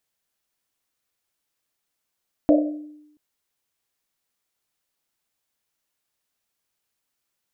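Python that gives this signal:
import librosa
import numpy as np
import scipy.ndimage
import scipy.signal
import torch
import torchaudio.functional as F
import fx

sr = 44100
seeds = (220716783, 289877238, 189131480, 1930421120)

y = fx.risset_drum(sr, seeds[0], length_s=0.68, hz=300.0, decay_s=0.91, noise_hz=590.0, noise_width_hz=120.0, noise_pct=35)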